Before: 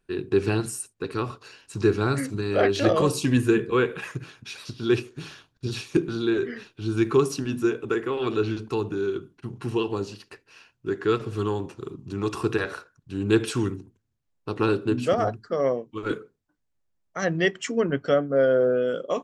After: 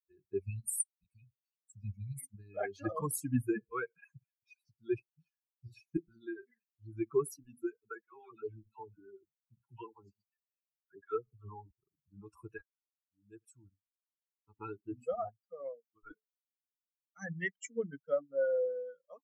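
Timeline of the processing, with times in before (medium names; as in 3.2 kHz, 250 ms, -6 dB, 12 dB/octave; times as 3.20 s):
0.42–2.34 s: spectral selection erased 270–1900 Hz
8.01–11.71 s: phase dispersion lows, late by 69 ms, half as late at 850 Hz
12.61–14.78 s: fade in, from -19 dB
whole clip: expander on every frequency bin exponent 3; FFT filter 2.1 kHz 0 dB, 3.8 kHz -21 dB, 10 kHz +14 dB; trim -7 dB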